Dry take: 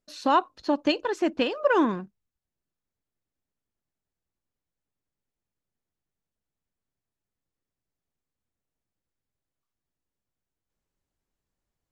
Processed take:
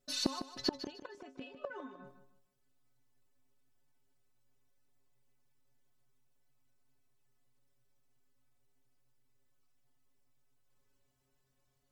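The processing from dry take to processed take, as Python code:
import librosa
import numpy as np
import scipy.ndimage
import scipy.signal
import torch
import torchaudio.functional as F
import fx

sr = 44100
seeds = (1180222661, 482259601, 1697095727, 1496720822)

y = fx.stiff_resonator(x, sr, f0_hz=130.0, decay_s=0.25, stiffness=0.008)
y = fx.gate_flip(y, sr, shuts_db=-33.0, range_db=-31)
y = fx.echo_feedback(y, sr, ms=153, feedback_pct=29, wet_db=-11.0)
y = y * librosa.db_to_amplitude(16.0)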